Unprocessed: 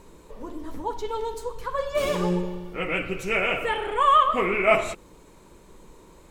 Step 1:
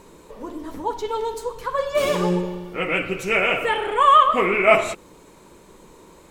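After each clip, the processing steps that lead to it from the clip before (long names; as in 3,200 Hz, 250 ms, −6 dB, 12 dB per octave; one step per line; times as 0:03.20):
low-shelf EQ 76 Hz −11.5 dB
level +4.5 dB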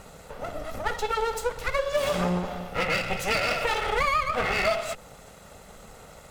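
lower of the sound and its delayed copy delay 1.5 ms
downward compressor 8 to 1, threshold −25 dBFS, peak gain reduction 15 dB
level +3 dB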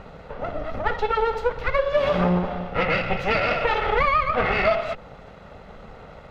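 high-frequency loss of the air 300 metres
level +6 dB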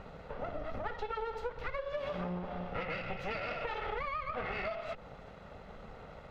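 downward compressor, threshold −28 dBFS, peak gain reduction 12 dB
level −7 dB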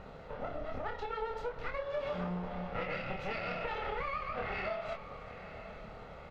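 double-tracking delay 27 ms −4 dB
feedback delay with all-pass diffusion 948 ms, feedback 41%, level −13 dB
level −1.5 dB
Nellymoser 88 kbit/s 44,100 Hz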